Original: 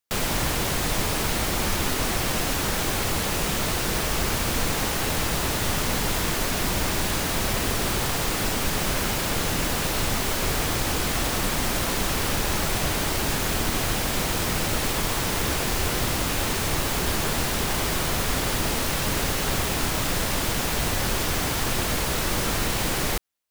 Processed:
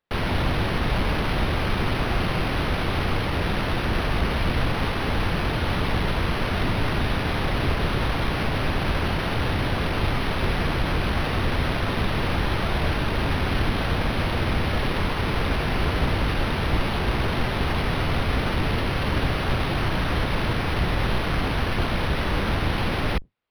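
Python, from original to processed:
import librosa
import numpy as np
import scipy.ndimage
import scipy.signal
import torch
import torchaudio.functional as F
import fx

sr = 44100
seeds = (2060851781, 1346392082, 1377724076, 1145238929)

y = fx.octave_divider(x, sr, octaves=1, level_db=3.0)
y = np.interp(np.arange(len(y)), np.arange(len(y))[::6], y[::6])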